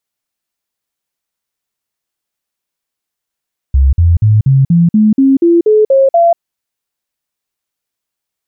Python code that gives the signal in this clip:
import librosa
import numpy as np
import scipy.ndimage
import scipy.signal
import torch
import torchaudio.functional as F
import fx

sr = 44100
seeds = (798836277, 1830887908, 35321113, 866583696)

y = fx.stepped_sweep(sr, from_hz=67.5, direction='up', per_octave=3, tones=11, dwell_s=0.19, gap_s=0.05, level_db=-4.5)